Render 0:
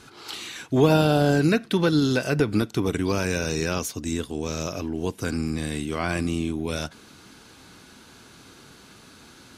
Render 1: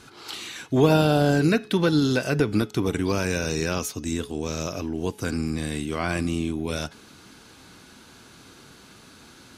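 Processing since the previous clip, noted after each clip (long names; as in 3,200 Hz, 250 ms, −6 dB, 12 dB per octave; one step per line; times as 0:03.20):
hum removal 423.8 Hz, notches 16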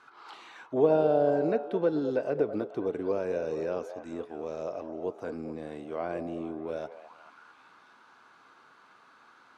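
echo through a band-pass that steps 216 ms, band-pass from 580 Hz, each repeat 0.7 octaves, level −8 dB
envelope filter 540–1,200 Hz, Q 2.1, down, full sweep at −22.5 dBFS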